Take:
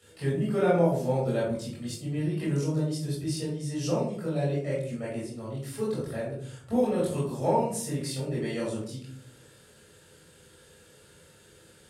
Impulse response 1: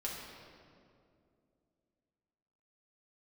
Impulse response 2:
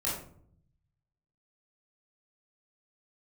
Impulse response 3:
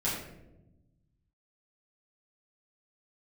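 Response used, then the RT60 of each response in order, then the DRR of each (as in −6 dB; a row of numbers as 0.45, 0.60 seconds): 2; 2.5, 0.60, 0.95 seconds; −4.5, −7.5, −9.0 decibels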